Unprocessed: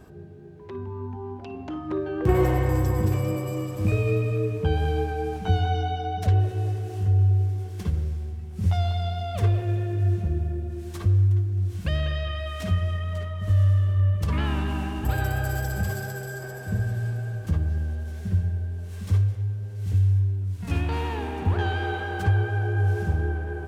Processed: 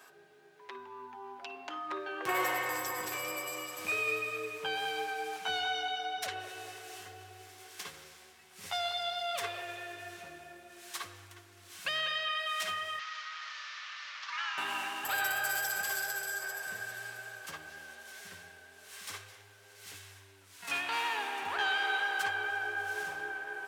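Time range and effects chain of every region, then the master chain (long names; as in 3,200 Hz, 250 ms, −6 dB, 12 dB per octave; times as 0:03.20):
0:12.99–0:14.58: linear delta modulator 32 kbit/s, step −32 dBFS + high-pass filter 1,200 Hz 24 dB per octave + spectral tilt −4 dB per octave
whole clip: high-pass filter 1,200 Hz 12 dB per octave; comb filter 7.3 ms, depth 32%; level +4.5 dB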